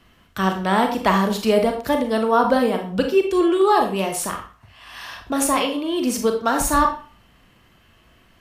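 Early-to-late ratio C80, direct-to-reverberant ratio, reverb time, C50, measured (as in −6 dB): 12.0 dB, 3.5 dB, 0.40 s, 7.5 dB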